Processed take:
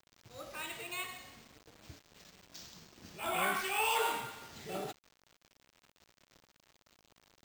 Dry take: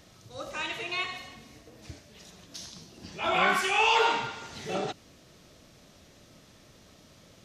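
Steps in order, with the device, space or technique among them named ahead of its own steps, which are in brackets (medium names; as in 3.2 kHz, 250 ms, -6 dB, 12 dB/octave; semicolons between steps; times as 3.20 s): early 8-bit sampler (sample-rate reducer 11 kHz, jitter 0%; bit crusher 8-bit); trim -8.5 dB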